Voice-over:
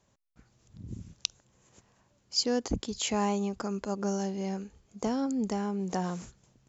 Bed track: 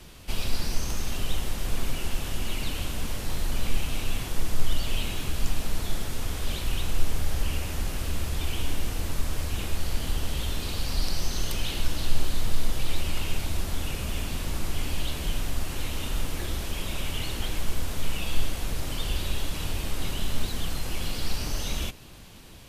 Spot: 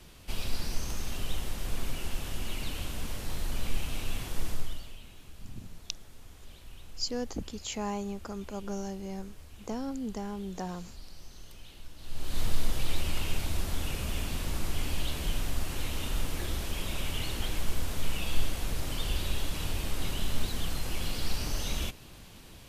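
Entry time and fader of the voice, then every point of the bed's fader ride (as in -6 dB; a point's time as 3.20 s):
4.65 s, -5.5 dB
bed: 4.50 s -5 dB
4.99 s -20.5 dB
11.96 s -20.5 dB
12.40 s -2.5 dB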